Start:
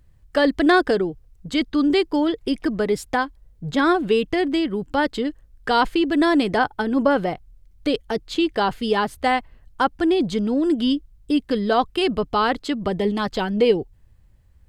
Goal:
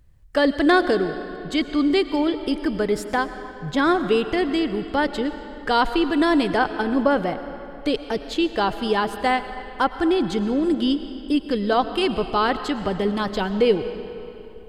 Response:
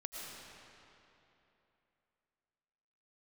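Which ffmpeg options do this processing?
-filter_complex "[0:a]asplit=2[link_01][link_02];[link_02]asubboost=boost=3.5:cutoff=84[link_03];[1:a]atrim=start_sample=2205[link_04];[link_03][link_04]afir=irnorm=-1:irlink=0,volume=-5.5dB[link_05];[link_01][link_05]amix=inputs=2:normalize=0,volume=-3dB"

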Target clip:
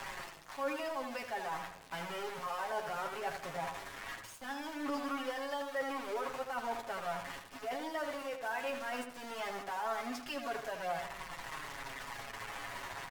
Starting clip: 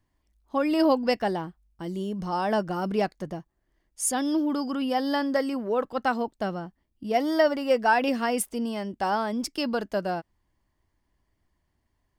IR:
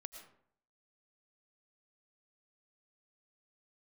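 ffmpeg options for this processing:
-filter_complex "[0:a]aeval=exprs='val(0)+0.5*0.0473*sgn(val(0))':channel_layout=same,aemphasis=mode=production:type=50fm,acrossover=split=190[link_01][link_02];[link_02]acompressor=threshold=-24dB:ratio=8[link_03];[link_01][link_03]amix=inputs=2:normalize=0,acrossover=split=590 2700:gain=0.112 1 0.112[link_04][link_05][link_06];[link_04][link_05][link_06]amix=inputs=3:normalize=0,aecho=1:1:7.3:0.81,areverse,acompressor=threshold=-32dB:ratio=8,areverse,lowpass=frequency=8100:width=0.5412,lowpass=frequency=8100:width=1.3066,atempo=0.93,aeval=exprs='val(0)*gte(abs(val(0)),0.00668)':channel_layout=same,flanger=delay=5:depth=9.1:regen=27:speed=0.18:shape=triangular,asplit=2[link_07][link_08];[link_08]adelay=81,lowpass=frequency=2500:poles=1,volume=-6.5dB,asplit=2[link_09][link_10];[link_10]adelay=81,lowpass=frequency=2500:poles=1,volume=0.42,asplit=2[link_11][link_12];[link_12]adelay=81,lowpass=frequency=2500:poles=1,volume=0.42,asplit=2[link_13][link_14];[link_14]adelay=81,lowpass=frequency=2500:poles=1,volume=0.42,asplit=2[link_15][link_16];[link_16]adelay=81,lowpass=frequency=2500:poles=1,volume=0.42[link_17];[link_07][link_09][link_11][link_13][link_15][link_17]amix=inputs=6:normalize=0,volume=1.5dB" -ar 44100 -c:a aac -b:a 96k

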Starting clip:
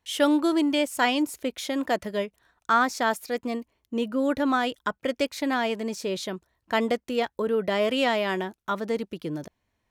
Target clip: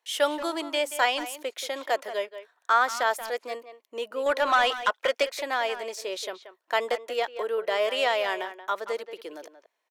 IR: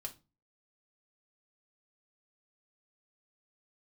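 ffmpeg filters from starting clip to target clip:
-filter_complex "[0:a]highpass=frequency=450:width=0.5412,highpass=frequency=450:width=1.3066,asettb=1/sr,asplit=3[link_01][link_02][link_03];[link_01]atrim=end=4.264[link_04];[link_02]atrim=start=4.26:end=5.23,asetpts=PTS-STARTPTS,afade=type=in:duration=0.004:curve=qsin,afade=type=out:start_time=0.966:duration=0.004:curve=qsin,asplit=2[link_05][link_06];[link_06]highpass=frequency=720:poles=1,volume=14dB,asoftclip=type=tanh:threshold=-12dB[link_07];[link_05][link_07]amix=inputs=2:normalize=0,lowpass=frequency=6100:poles=1,volume=-6dB[link_08];[link_03]atrim=start=5.226[link_09];[link_04][link_08]acrossfade=duration=0.004:curve1=hsin:curve2=qsin[link_10];[link_10][link_09]acrossfade=duration=0.004:curve1=qsin:curve2=hsin,asplit=2[link_11][link_12];[link_12]adelay=180,highpass=300,lowpass=3400,asoftclip=type=hard:threshold=-20dB,volume=-11dB[link_13];[link_11][link_13]amix=inputs=2:normalize=0"

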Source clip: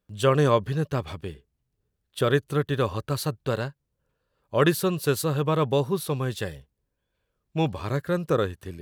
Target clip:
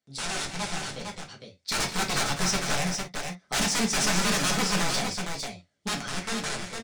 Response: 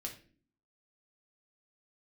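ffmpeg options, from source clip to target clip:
-filter_complex "[0:a]highpass=81,aresample=16000,aeval=exprs='(mod(11.9*val(0)+1,2)-1)/11.9':channel_layout=same,aresample=44100,tiltshelf=frequency=970:gain=-5,acrossover=split=690|1500[link_01][link_02][link_03];[link_03]alimiter=limit=-20.5dB:level=0:latency=1[link_04];[link_01][link_02][link_04]amix=inputs=3:normalize=0,dynaudnorm=framelen=300:gausssize=13:maxgain=11dB,asoftclip=type=tanh:threshold=-19dB,equalizer=frequency=4400:width_type=o:width=0.77:gain=2,asetrate=56889,aresample=44100,aecho=1:1:80|200|456:0.141|0.251|0.531[link_05];[1:a]atrim=start_sample=2205,atrim=end_sample=3528,asetrate=52920,aresample=44100[link_06];[link_05][link_06]afir=irnorm=-1:irlink=0"

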